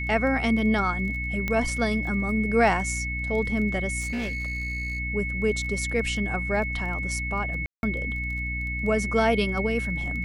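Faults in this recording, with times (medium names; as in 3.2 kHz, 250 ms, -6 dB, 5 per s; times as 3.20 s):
crackle 15 per s -34 dBFS
hum 60 Hz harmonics 5 -32 dBFS
whine 2.2 kHz -30 dBFS
1.48 s: pop -14 dBFS
4.00–5.00 s: clipped -26 dBFS
7.66–7.83 s: dropout 171 ms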